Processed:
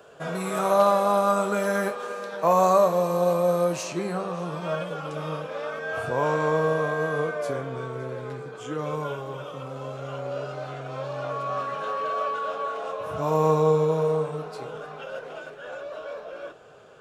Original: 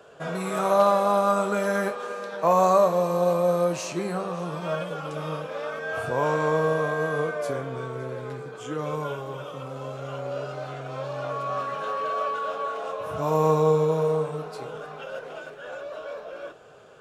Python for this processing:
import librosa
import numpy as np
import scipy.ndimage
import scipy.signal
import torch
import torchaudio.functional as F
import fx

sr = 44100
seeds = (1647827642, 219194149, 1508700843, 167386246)

y = fx.high_shelf(x, sr, hz=11000.0, db=fx.steps((0.0, 6.0), (3.82, -5.0)))